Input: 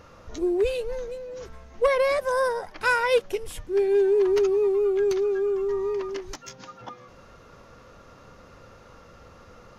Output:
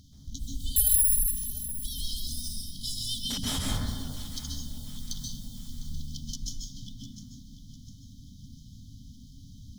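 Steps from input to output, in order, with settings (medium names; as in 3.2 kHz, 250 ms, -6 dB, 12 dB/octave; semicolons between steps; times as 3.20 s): companding laws mixed up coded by A; 0.76–1.31 s: careless resampling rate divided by 4×, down filtered, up zero stuff; FFT band-reject 280–3000 Hz; 3.25–3.77 s: overdrive pedal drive 34 dB, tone 1.4 kHz, clips at -16 dBFS; on a send: echo whose repeats swap between lows and highs 351 ms, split 800 Hz, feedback 65%, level -13 dB; on the sum: plate-style reverb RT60 1.4 s, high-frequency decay 0.25×, pre-delay 120 ms, DRR -5 dB; in parallel at 0 dB: compression, threshold -43 dBFS, peak gain reduction 22 dB; on the sum: tone controls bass +2 dB, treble +3 dB; trim -1.5 dB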